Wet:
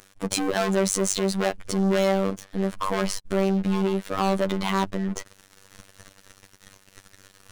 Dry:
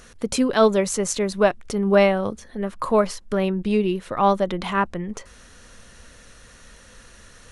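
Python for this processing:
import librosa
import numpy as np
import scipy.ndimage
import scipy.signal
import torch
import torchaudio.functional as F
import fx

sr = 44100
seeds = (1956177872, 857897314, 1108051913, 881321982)

y = fx.leveller(x, sr, passes=5)
y = fx.robotise(y, sr, hz=96.7)
y = y * 10.0 ** (-12.5 / 20.0)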